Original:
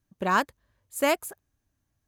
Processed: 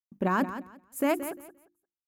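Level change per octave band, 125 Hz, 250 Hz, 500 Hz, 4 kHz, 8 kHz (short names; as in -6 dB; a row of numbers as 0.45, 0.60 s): n/a, +4.0 dB, -2.5 dB, -10.5 dB, -6.5 dB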